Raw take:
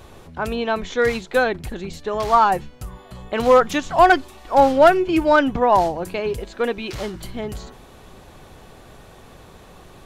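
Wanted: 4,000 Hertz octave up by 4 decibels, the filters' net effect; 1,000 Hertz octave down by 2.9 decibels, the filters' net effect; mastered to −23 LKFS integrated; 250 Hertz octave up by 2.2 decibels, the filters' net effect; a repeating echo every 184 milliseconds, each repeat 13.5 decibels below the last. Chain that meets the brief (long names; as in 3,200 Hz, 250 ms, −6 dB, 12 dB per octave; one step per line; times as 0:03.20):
parametric band 250 Hz +3 dB
parametric band 1,000 Hz −4.5 dB
parametric band 4,000 Hz +5.5 dB
repeating echo 184 ms, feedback 21%, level −13.5 dB
level −3 dB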